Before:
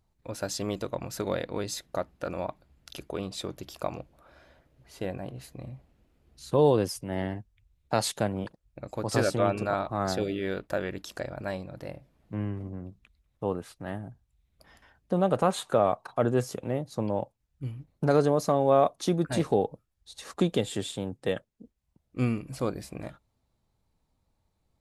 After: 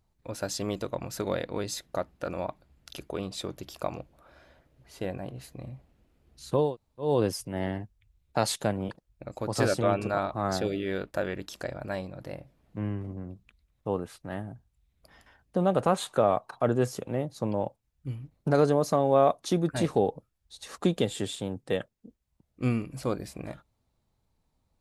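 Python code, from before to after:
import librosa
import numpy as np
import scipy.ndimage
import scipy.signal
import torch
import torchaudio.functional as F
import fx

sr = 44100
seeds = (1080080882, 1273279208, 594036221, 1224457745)

y = fx.edit(x, sr, fx.insert_room_tone(at_s=6.65, length_s=0.44, crossfade_s=0.24), tone=tone)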